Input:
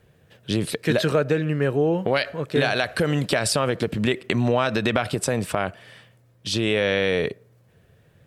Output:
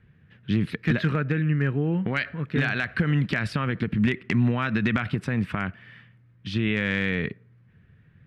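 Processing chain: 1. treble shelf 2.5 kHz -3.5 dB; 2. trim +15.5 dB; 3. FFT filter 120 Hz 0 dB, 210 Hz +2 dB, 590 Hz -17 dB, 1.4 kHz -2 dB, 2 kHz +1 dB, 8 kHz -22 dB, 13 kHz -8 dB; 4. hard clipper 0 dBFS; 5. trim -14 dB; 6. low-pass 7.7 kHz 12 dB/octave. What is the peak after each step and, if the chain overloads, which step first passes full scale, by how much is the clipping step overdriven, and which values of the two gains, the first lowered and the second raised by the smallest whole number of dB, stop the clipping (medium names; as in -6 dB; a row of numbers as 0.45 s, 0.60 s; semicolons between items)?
-7.5 dBFS, +8.0 dBFS, +6.5 dBFS, 0.0 dBFS, -14.0 dBFS, -13.5 dBFS; step 2, 6.5 dB; step 2 +8.5 dB, step 5 -7 dB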